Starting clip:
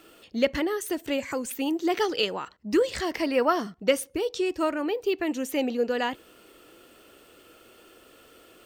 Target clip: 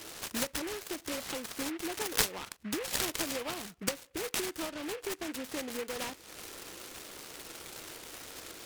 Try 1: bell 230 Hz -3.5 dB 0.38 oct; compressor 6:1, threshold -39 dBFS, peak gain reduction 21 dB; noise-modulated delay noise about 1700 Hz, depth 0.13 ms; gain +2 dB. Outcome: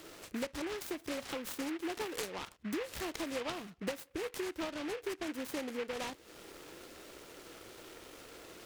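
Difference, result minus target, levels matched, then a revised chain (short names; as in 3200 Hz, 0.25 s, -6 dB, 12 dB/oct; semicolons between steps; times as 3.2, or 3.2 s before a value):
4000 Hz band -4.0 dB
bell 230 Hz -3.5 dB 0.38 oct; compressor 6:1, threshold -39 dBFS, peak gain reduction 21 dB; synth low-pass 4400 Hz, resonance Q 15; noise-modulated delay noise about 1700 Hz, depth 0.13 ms; gain +2 dB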